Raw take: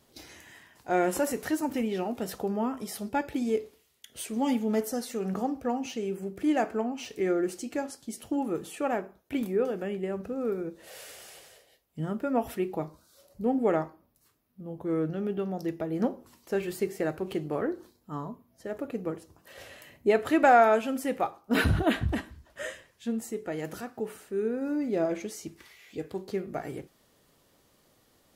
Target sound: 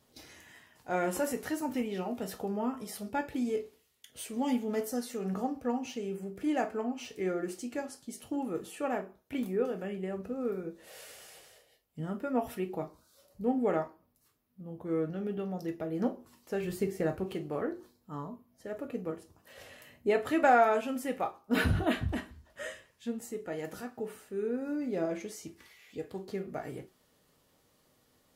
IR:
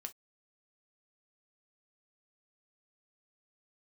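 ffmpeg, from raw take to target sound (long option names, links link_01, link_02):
-filter_complex "[0:a]asettb=1/sr,asplit=3[link_01][link_02][link_03];[link_01]atrim=end=16.634[link_04];[link_02]atrim=start=16.63:end=17.24,asetpts=PTS-STARTPTS,afade=type=in:duration=0.004:curve=qsin,afade=type=out:start_time=0.606:duration=0.004:curve=qsin,lowshelf=frequency=200:gain=11.5[link_05];[link_03]atrim=start=17.236[link_06];[link_04][link_05]acrossfade=duration=0.004:curve1=hsin:curve2=qsin[link_07];[link_07][link_06]acrossfade=duration=0.004:curve1=qsin:curve2=hsin[link_08];[1:a]atrim=start_sample=2205,asetrate=43218,aresample=44100[link_09];[link_08][link_09]afir=irnorm=-1:irlink=0"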